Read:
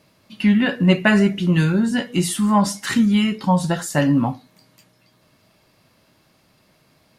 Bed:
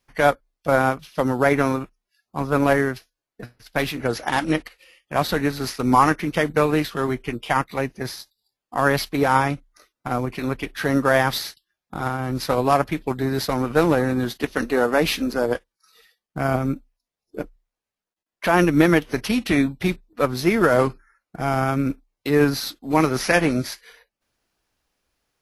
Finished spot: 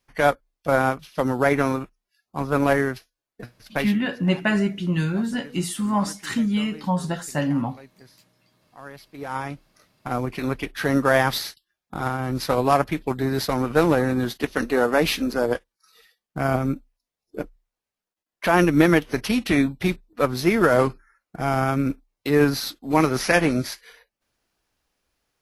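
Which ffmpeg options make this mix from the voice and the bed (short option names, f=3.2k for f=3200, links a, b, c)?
-filter_complex "[0:a]adelay=3400,volume=-6dB[a];[1:a]volume=20dB,afade=t=out:st=3.74:d=0.3:silence=0.0944061,afade=t=in:st=9.08:d=1.28:silence=0.0841395[b];[a][b]amix=inputs=2:normalize=0"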